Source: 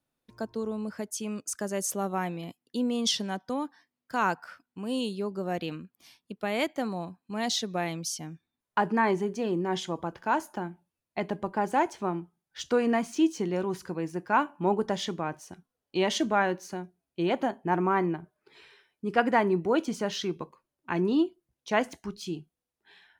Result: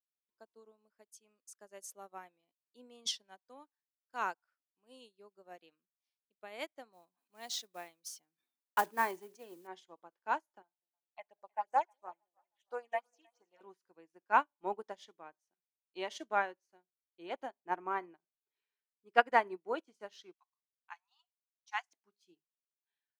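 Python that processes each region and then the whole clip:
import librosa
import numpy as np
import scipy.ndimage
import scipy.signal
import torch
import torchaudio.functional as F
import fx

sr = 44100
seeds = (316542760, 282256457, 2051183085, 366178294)

y = fx.chain(x, sr, fx.block_float(bits=5),
    fx.high_shelf(hz=9100.0, db=9.0),
    fx.sustainer(db_per_s=69.0), at=(6.93, 9.69))
y = fx.chain(y, sr, fx.low_shelf_res(hz=460.0, db=-10.5, q=1.5),
    fx.phaser_stages(stages=6, low_hz=330.0, high_hz=3900.0, hz=2.9, feedback_pct=20),
    fx.echo_split(split_hz=540.0, low_ms=199, high_ms=314, feedback_pct=52, wet_db=-14.0), at=(10.62, 13.61))
y = fx.chain(y, sr, fx.brickwall_highpass(low_hz=700.0),
    fx.peak_eq(hz=6000.0, db=9.0, octaves=0.79), at=(20.33, 21.93))
y = scipy.signal.sosfilt(scipy.signal.butter(2, 420.0, 'highpass', fs=sr, output='sos'), y)
y = fx.upward_expand(y, sr, threshold_db=-45.0, expansion=2.5)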